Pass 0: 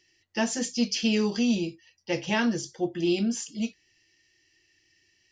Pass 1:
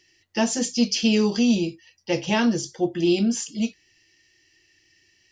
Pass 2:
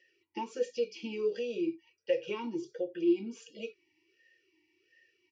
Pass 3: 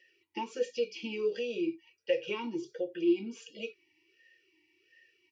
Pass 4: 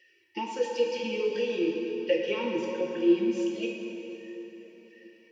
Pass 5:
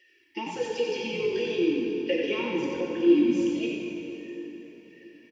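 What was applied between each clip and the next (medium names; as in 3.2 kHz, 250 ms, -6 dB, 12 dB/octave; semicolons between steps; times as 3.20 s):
dynamic bell 1.8 kHz, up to -5 dB, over -45 dBFS, Q 1.7; trim +5 dB
comb 2.1 ms, depth 47%; compression 4:1, threshold -27 dBFS, peak gain reduction 9.5 dB; talking filter e-u 1.4 Hz; trim +5 dB
peaking EQ 2.7 kHz +4.5 dB 1.4 oct
plate-style reverb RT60 3.9 s, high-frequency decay 0.7×, DRR 0 dB; trim +2.5 dB
comb 2.9 ms, depth 33%; small resonant body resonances 2.2/3.3 kHz, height 7 dB, ringing for 20 ms; on a send: frequency-shifting echo 91 ms, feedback 31%, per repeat -49 Hz, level -5 dB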